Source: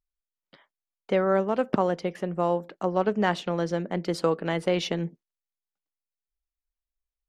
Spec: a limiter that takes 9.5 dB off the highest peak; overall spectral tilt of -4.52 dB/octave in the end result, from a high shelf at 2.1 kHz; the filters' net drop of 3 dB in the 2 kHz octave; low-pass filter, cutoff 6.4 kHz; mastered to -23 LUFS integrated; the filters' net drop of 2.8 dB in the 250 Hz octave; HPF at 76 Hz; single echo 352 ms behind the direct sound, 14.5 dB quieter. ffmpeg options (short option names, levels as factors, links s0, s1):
-af "highpass=76,lowpass=6400,equalizer=f=250:t=o:g=-4.5,equalizer=f=2000:t=o:g=-7,highshelf=f=2100:g=6,alimiter=limit=0.0944:level=0:latency=1,aecho=1:1:352:0.188,volume=2.82"